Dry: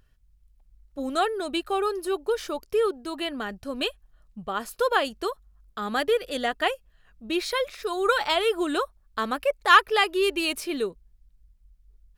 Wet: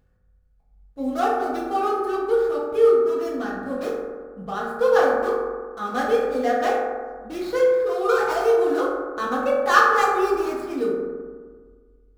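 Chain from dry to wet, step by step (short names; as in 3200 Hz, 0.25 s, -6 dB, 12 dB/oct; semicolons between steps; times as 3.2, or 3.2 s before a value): median filter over 15 samples; reverb RT60 1.6 s, pre-delay 3 ms, DRR -7.5 dB; gain -4.5 dB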